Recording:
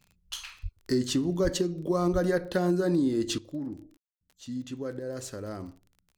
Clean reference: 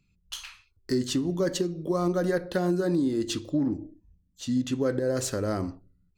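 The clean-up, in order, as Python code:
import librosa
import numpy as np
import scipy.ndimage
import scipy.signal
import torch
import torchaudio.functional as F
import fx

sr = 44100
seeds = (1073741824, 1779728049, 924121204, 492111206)

y = fx.fix_declick_ar(x, sr, threshold=6.5)
y = fx.fix_deplosive(y, sr, at_s=(0.62, 1.43, 2.12))
y = fx.fix_ambience(y, sr, seeds[0], print_start_s=5.66, print_end_s=6.16, start_s=3.97, end_s=4.21)
y = fx.fix_level(y, sr, at_s=3.38, step_db=9.0)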